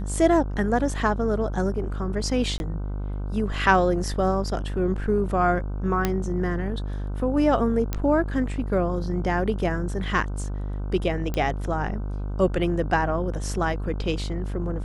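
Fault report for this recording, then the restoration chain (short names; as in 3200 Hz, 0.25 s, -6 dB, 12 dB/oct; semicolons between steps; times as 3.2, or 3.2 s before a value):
buzz 50 Hz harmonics 31 -29 dBFS
2.58–2.6 gap 21 ms
6.05 pop -8 dBFS
7.93 pop -12 dBFS
11.34 pop -14 dBFS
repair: de-click; de-hum 50 Hz, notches 31; interpolate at 2.58, 21 ms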